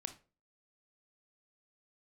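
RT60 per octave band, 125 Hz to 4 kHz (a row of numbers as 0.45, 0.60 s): 0.40, 0.45, 0.40, 0.30, 0.30, 0.25 s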